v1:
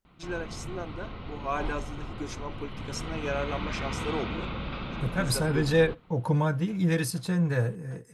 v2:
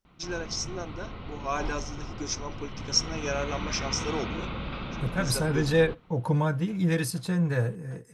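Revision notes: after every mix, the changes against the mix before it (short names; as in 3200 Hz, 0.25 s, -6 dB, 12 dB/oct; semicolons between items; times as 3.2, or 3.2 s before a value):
first voice: add synth low-pass 5700 Hz, resonance Q 7.9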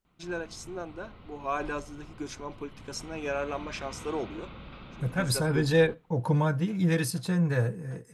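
first voice: remove synth low-pass 5700 Hz, resonance Q 7.9; background -10.5 dB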